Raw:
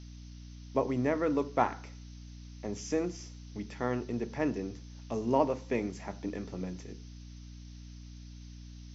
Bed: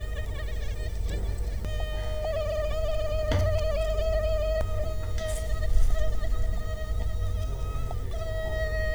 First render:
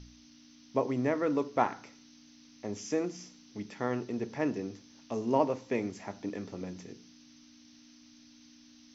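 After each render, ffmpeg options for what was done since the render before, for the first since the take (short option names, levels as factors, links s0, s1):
-af "bandreject=f=60:t=h:w=4,bandreject=f=120:t=h:w=4,bandreject=f=180:t=h:w=4"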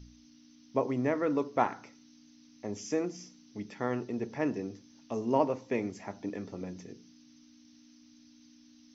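-af "afftdn=nr=6:nf=-57"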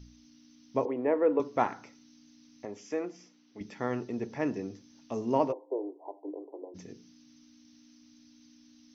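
-filter_complex "[0:a]asettb=1/sr,asplit=3[s0][s1][s2];[s0]atrim=end=0.854[s3];[s1]atrim=start=0.85:end=1.4,asetpts=PTS-STARTPTS,afade=t=in:d=0.004:c=qsin,afade=t=out:st=0.546:d=0.004:c=qsin,highpass=310,equalizer=f=330:t=q:w=4:g=4,equalizer=f=480:t=q:w=4:g=8,equalizer=f=880:t=q:w=4:g=5,equalizer=f=1300:t=q:w=4:g=-6,equalizer=f=2000:t=q:w=4:g=-5,lowpass=f=2600:w=0.5412,lowpass=f=2600:w=1.3066[s4];[s2]atrim=start=1.396[s5];[s3][s4]acrossfade=d=0.004:c1=hsin:c2=qsin[s6];[s6][s5]acrossfade=d=0.004:c1=qsin:c2=hsin,asettb=1/sr,asplit=3[s7][s8][s9];[s7]atrim=end=2.654[s10];[s8]atrim=start=2.65:end=3.61,asetpts=PTS-STARTPTS,afade=t=in:d=0.004:c=qsin,afade=t=out:st=0.956:d=0.004:c=qsin,bass=f=250:g=-13,treble=f=4000:g=-11[s11];[s9]atrim=start=3.606[s12];[s10][s11]acrossfade=d=0.004:c1=hsin:c2=qsin[s13];[s13][s12]acrossfade=d=0.004:c1=qsin:c2=hsin,asplit=3[s14][s15][s16];[s14]afade=t=out:st=5.51:d=0.02[s17];[s15]asuperpass=centerf=550:order=20:qfactor=0.76,afade=t=in:st=5.51:d=0.02,afade=t=out:st=6.74:d=0.02[s18];[s16]afade=t=in:st=6.74:d=0.02[s19];[s17][s18][s19]amix=inputs=3:normalize=0"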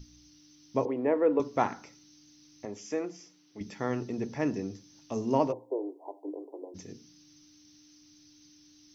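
-af "bass=f=250:g=5,treble=f=4000:g=7,bandreject=f=60:t=h:w=6,bandreject=f=120:t=h:w=6,bandreject=f=180:t=h:w=6,bandreject=f=240:t=h:w=6"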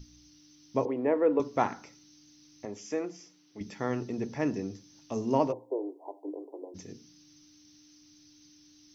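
-af anull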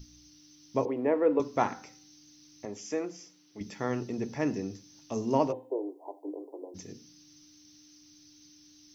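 -af "highshelf=f=6600:g=6,bandreject=f=257.4:t=h:w=4,bandreject=f=514.8:t=h:w=4,bandreject=f=772.2:t=h:w=4,bandreject=f=1029.6:t=h:w=4,bandreject=f=1287:t=h:w=4,bandreject=f=1544.4:t=h:w=4,bandreject=f=1801.8:t=h:w=4,bandreject=f=2059.2:t=h:w=4,bandreject=f=2316.6:t=h:w=4,bandreject=f=2574:t=h:w=4,bandreject=f=2831.4:t=h:w=4,bandreject=f=3088.8:t=h:w=4,bandreject=f=3346.2:t=h:w=4,bandreject=f=3603.6:t=h:w=4,bandreject=f=3861:t=h:w=4,bandreject=f=4118.4:t=h:w=4"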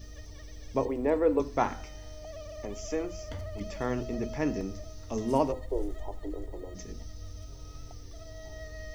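-filter_complex "[1:a]volume=0.2[s0];[0:a][s0]amix=inputs=2:normalize=0"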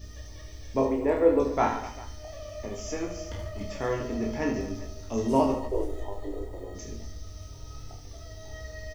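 -filter_complex "[0:a]asplit=2[s0][s1];[s1]adelay=18,volume=0.531[s2];[s0][s2]amix=inputs=2:normalize=0,asplit=2[s3][s4];[s4]aecho=0:1:30|75|142.5|243.8|395.6:0.631|0.398|0.251|0.158|0.1[s5];[s3][s5]amix=inputs=2:normalize=0"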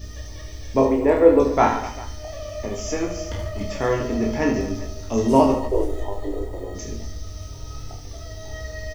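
-af "volume=2.37"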